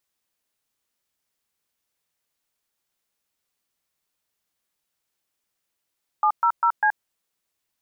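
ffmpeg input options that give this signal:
-f lavfi -i "aevalsrc='0.119*clip(min(mod(t,0.199),0.076-mod(t,0.199))/0.002,0,1)*(eq(floor(t/0.199),0)*(sin(2*PI*852*mod(t,0.199))+sin(2*PI*1209*mod(t,0.199)))+eq(floor(t/0.199),1)*(sin(2*PI*941*mod(t,0.199))+sin(2*PI*1336*mod(t,0.199)))+eq(floor(t/0.199),2)*(sin(2*PI*941*mod(t,0.199))+sin(2*PI*1336*mod(t,0.199)))+eq(floor(t/0.199),3)*(sin(2*PI*852*mod(t,0.199))+sin(2*PI*1633*mod(t,0.199))))':d=0.796:s=44100"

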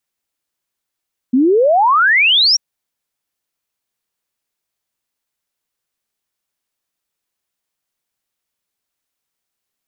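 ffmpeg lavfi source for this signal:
-f lavfi -i "aevalsrc='0.376*clip(min(t,1.24-t)/0.01,0,1)*sin(2*PI*240*1.24/log(5800/240)*(exp(log(5800/240)*t/1.24)-1))':d=1.24:s=44100"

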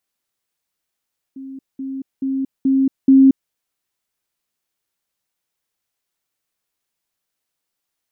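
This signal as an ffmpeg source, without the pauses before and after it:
-f lavfi -i "aevalsrc='pow(10,(-30+6*floor(t/0.43))/20)*sin(2*PI*268*t)*clip(min(mod(t,0.43),0.23-mod(t,0.43))/0.005,0,1)':d=2.15:s=44100"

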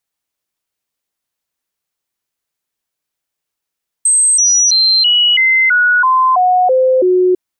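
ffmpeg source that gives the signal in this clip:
-f lavfi -i "aevalsrc='0.422*clip(min(mod(t,0.33),0.33-mod(t,0.33))/0.005,0,1)*sin(2*PI*8270*pow(2,-floor(t/0.33)/2)*mod(t,0.33))':d=3.3:s=44100"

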